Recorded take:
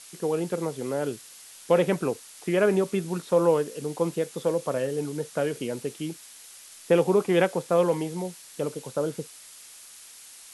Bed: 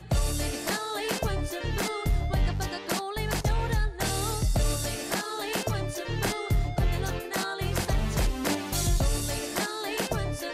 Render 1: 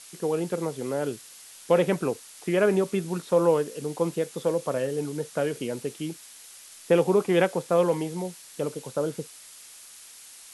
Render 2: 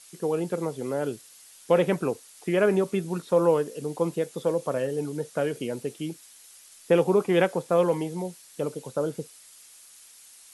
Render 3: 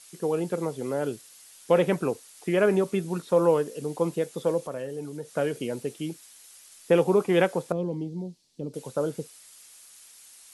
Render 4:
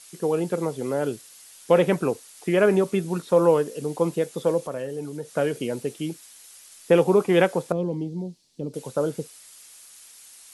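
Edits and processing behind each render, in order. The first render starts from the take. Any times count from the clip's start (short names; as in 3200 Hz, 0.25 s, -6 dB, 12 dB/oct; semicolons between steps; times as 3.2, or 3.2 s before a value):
nothing audible
denoiser 6 dB, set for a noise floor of -48 dBFS
4.6–5.35 compressor 1.5:1, threshold -41 dBFS; 7.72–8.74 EQ curve 280 Hz 0 dB, 510 Hz -11 dB, 860 Hz -15 dB, 1400 Hz -26 dB, 4500 Hz -9 dB, 11000 Hz -25 dB
gain +3 dB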